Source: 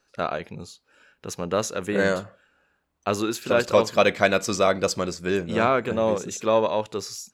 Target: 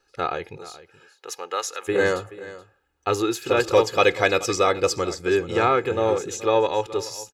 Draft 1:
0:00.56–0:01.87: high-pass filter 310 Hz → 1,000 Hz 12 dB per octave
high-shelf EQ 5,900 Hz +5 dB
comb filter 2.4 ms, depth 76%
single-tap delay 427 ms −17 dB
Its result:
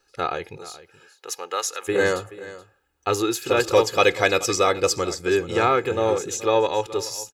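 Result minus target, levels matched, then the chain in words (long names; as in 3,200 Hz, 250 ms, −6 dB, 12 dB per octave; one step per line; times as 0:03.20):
8,000 Hz band +3.5 dB
0:00.56–0:01.87: high-pass filter 310 Hz → 1,000 Hz 12 dB per octave
high-shelf EQ 5,900 Hz −2 dB
comb filter 2.4 ms, depth 76%
single-tap delay 427 ms −17 dB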